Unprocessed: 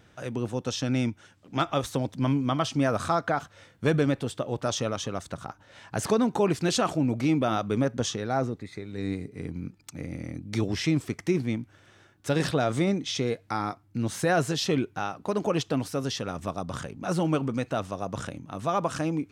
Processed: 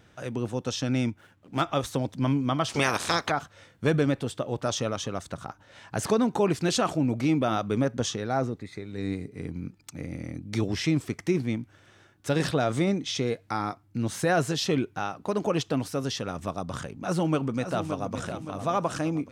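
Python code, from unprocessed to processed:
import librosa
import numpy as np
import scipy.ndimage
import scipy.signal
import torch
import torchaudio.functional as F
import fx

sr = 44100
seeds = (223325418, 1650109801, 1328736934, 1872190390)

y = fx.median_filter(x, sr, points=9, at=(1.09, 1.61))
y = fx.spec_clip(y, sr, under_db=24, at=(2.68, 3.3), fade=0.02)
y = fx.echo_throw(y, sr, start_s=17.01, length_s=1.13, ms=570, feedback_pct=45, wet_db=-9.0)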